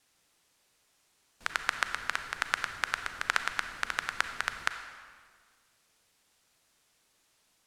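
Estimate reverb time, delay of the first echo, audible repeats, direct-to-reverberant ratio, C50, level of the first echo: 1.7 s, no echo, no echo, 8.0 dB, 8.5 dB, no echo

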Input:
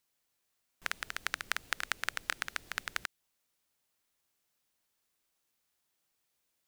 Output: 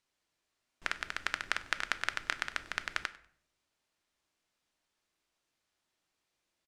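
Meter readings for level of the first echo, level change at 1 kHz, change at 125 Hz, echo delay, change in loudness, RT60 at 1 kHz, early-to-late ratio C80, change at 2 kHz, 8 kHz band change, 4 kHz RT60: -21.5 dB, +2.0 dB, +1.5 dB, 97 ms, +1.0 dB, 0.55 s, 18.5 dB, +1.5 dB, -3.5 dB, 0.40 s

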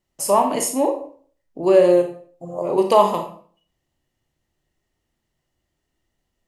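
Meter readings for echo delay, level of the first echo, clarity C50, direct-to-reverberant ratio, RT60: no echo, no echo, 8.0 dB, 4.0 dB, 0.45 s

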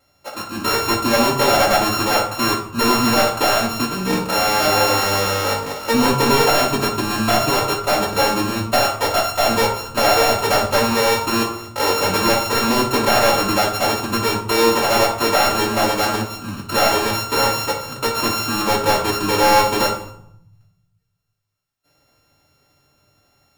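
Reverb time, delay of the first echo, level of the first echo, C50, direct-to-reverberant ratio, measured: 0.70 s, no echo, no echo, 6.0 dB, -9.0 dB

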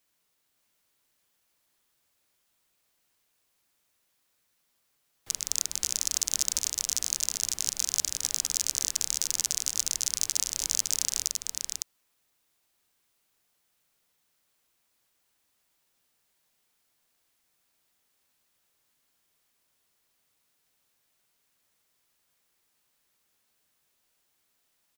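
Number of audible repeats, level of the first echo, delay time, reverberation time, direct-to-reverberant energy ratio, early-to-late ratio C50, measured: 1, -4.0 dB, 560 ms, no reverb, no reverb, no reverb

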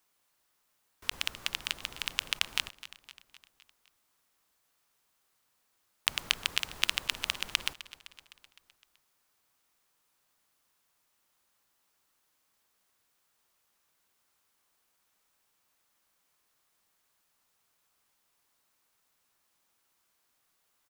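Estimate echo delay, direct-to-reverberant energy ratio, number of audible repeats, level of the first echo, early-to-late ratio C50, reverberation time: 256 ms, no reverb, 4, -17.0 dB, no reverb, no reverb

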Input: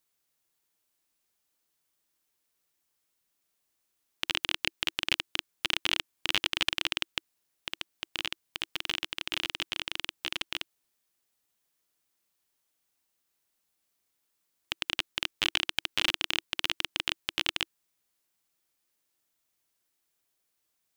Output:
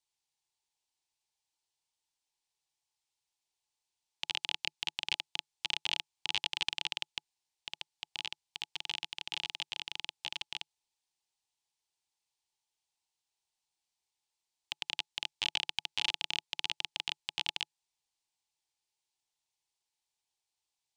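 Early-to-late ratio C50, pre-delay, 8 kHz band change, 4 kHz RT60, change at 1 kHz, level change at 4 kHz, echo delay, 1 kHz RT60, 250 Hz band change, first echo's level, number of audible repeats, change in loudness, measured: no reverb, no reverb, -6.0 dB, no reverb, -6.0 dB, -4.5 dB, no echo, no reverb, -15.5 dB, no echo, no echo, -5.5 dB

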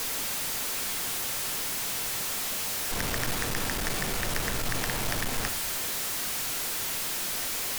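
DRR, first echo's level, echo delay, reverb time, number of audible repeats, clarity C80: 10.0 dB, no echo, no echo, 0.40 s, no echo, 20.0 dB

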